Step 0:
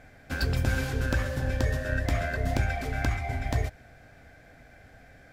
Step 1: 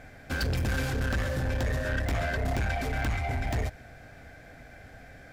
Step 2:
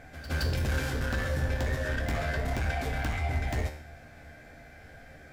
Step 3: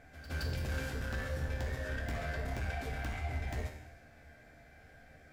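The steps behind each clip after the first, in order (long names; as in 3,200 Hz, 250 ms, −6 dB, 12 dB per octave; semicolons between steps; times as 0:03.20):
soft clipping −28.5 dBFS, distortion −9 dB; level +4 dB
tuned comb filter 76 Hz, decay 0.59 s, harmonics all, mix 80%; echo ahead of the sound 168 ms −13.5 dB; level +8 dB
reverb whose tail is shaped and stops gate 360 ms falling, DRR 7 dB; level −8.5 dB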